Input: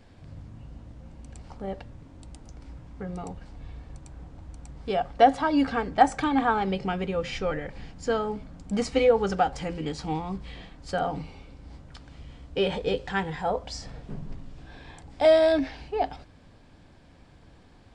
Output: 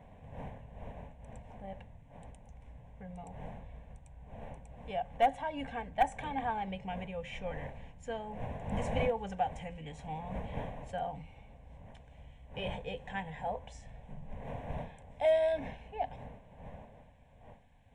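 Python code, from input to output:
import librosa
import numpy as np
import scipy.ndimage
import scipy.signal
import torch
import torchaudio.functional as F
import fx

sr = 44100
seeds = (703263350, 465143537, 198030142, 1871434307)

y = np.minimum(x, 2.0 * 10.0 ** (-11.5 / 20.0) - x)
y = fx.dmg_wind(y, sr, seeds[0], corner_hz=480.0, level_db=-35.0)
y = fx.fixed_phaser(y, sr, hz=1300.0, stages=6)
y = F.gain(torch.from_numpy(y), -8.0).numpy()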